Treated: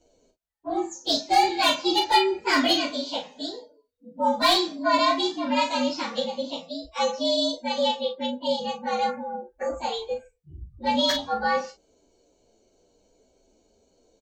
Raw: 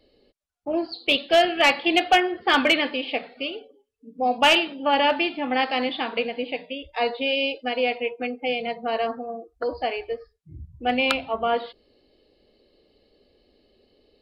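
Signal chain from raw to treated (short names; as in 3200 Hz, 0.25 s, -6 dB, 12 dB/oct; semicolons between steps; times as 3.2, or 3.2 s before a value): inharmonic rescaling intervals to 115%; doubler 36 ms -7 dB; gain +1 dB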